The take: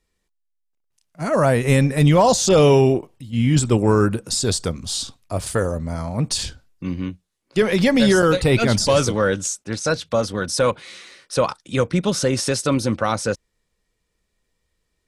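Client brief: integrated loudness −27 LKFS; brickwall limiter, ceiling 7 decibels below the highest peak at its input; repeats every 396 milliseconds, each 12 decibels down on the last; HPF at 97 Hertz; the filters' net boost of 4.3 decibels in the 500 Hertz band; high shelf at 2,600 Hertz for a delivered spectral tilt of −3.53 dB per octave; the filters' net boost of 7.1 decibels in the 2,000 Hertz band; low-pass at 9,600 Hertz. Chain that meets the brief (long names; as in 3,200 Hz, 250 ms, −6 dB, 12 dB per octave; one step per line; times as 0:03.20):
high-pass filter 97 Hz
low-pass filter 9,600 Hz
parametric band 500 Hz +4.5 dB
parametric band 2,000 Hz +5.5 dB
high-shelf EQ 2,600 Hz +8 dB
brickwall limiter −6.5 dBFS
repeating echo 396 ms, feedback 25%, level −12 dB
level −9 dB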